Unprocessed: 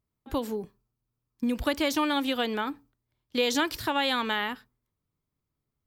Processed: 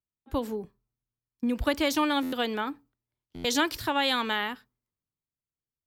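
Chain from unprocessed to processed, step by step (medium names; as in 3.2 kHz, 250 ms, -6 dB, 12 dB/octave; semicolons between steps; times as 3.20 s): buffer glitch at 2.22/3.34 s, samples 512, times 8; three bands expanded up and down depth 40%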